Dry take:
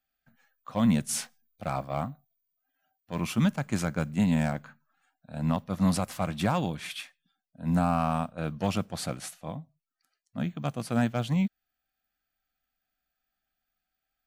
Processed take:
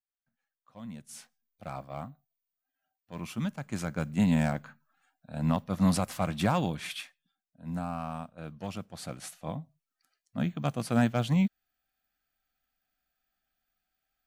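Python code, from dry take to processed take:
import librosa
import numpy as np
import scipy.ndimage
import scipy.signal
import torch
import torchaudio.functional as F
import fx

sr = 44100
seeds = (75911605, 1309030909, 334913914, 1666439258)

y = fx.gain(x, sr, db=fx.line((0.91, -19.5), (1.63, -8.0), (3.54, -8.0), (4.24, 0.0), (6.93, 0.0), (7.64, -9.5), (8.9, -9.5), (9.49, 1.0)))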